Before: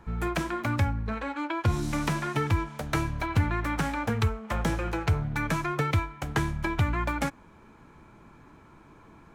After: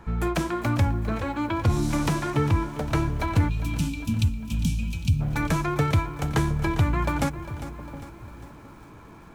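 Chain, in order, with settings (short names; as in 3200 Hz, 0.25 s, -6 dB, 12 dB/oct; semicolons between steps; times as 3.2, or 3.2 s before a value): dynamic EQ 1800 Hz, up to -5 dB, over -46 dBFS, Q 0.87; soft clip -17 dBFS, distortion -21 dB; 2.3–3.18 high shelf 4800 Hz -8.5 dB; dark delay 0.714 s, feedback 36%, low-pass 630 Hz, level -13.5 dB; 3.49–5.21 spectral gain 300–2300 Hz -29 dB; lo-fi delay 0.402 s, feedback 55%, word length 9-bit, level -13.5 dB; gain +5 dB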